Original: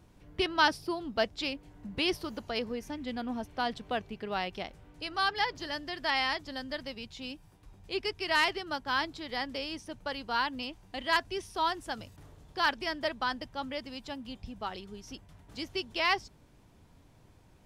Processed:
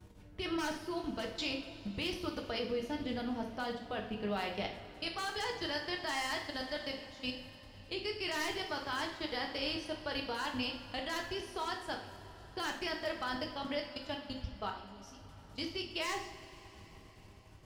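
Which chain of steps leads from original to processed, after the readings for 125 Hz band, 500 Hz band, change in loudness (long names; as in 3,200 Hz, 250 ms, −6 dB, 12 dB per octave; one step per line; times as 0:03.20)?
+0.5 dB, −3.0 dB, −5.0 dB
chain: wavefolder on the positive side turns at −22 dBFS
output level in coarse steps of 20 dB
coupled-rooms reverb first 0.53 s, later 4.8 s, from −18 dB, DRR 1 dB
level +2 dB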